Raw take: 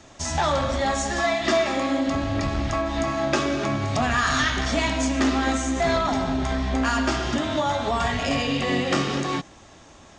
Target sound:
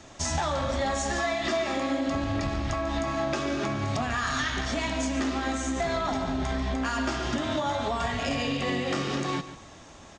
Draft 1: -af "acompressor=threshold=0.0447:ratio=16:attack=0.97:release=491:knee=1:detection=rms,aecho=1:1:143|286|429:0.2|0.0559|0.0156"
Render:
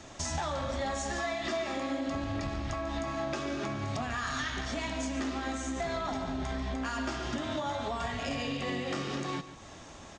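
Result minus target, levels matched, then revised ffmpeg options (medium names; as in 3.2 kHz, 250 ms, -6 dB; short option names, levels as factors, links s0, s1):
compression: peak gain reduction +5.5 dB
-af "acompressor=threshold=0.0891:ratio=16:attack=0.97:release=491:knee=1:detection=rms,aecho=1:1:143|286|429:0.2|0.0559|0.0156"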